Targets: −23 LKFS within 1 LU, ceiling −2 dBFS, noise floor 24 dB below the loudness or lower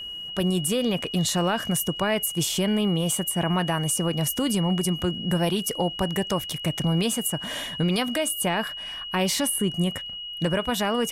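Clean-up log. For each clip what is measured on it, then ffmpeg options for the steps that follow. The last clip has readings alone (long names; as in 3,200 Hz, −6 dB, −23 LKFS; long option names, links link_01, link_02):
interfering tone 2,900 Hz; level of the tone −33 dBFS; integrated loudness −25.0 LKFS; sample peak −12.0 dBFS; target loudness −23.0 LKFS
→ -af "bandreject=frequency=2900:width=30"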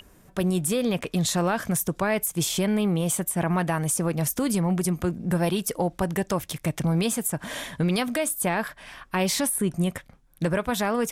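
interfering tone none found; integrated loudness −25.5 LKFS; sample peak −13.0 dBFS; target loudness −23.0 LKFS
→ -af "volume=2.5dB"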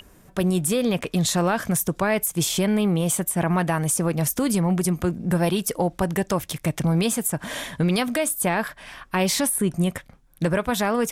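integrated loudness −23.0 LKFS; sample peak −10.5 dBFS; background noise floor −53 dBFS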